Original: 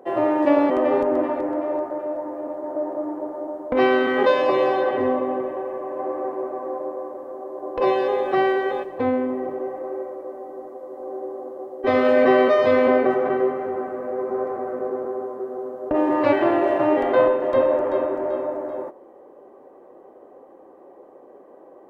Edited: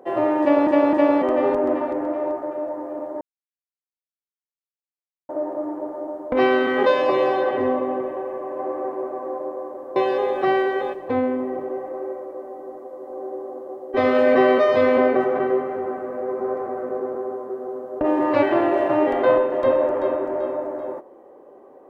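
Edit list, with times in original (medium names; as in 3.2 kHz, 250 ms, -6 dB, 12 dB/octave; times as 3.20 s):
0.41–0.67 s: loop, 3 plays
2.69 s: insert silence 2.08 s
7.36–7.86 s: delete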